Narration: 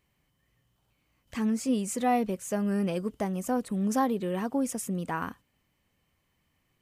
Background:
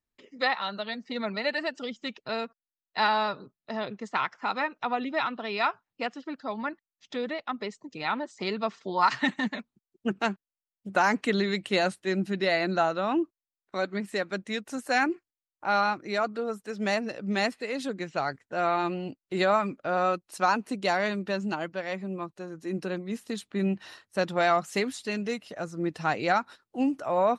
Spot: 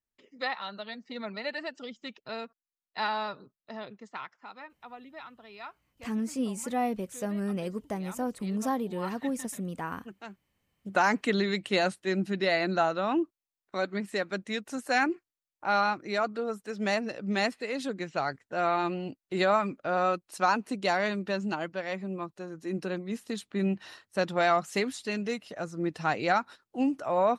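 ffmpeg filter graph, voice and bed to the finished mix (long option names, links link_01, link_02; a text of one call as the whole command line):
ffmpeg -i stem1.wav -i stem2.wav -filter_complex "[0:a]adelay=4700,volume=-3.5dB[link_01];[1:a]volume=10dB,afade=type=out:start_time=3.52:duration=0.98:silence=0.281838,afade=type=in:start_time=10.27:duration=0.56:silence=0.158489[link_02];[link_01][link_02]amix=inputs=2:normalize=0" out.wav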